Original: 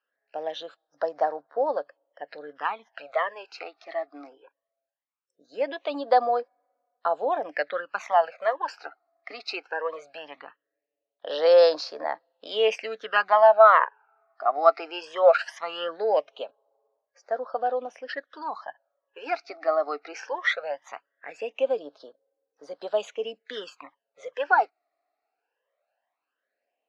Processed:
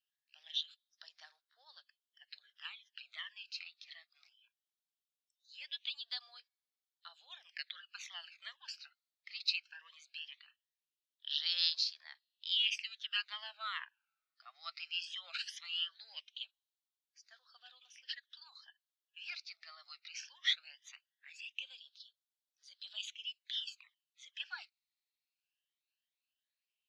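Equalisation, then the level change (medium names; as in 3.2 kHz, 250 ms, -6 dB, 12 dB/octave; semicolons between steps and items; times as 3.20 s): ladder high-pass 2.9 kHz, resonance 50%; +5.5 dB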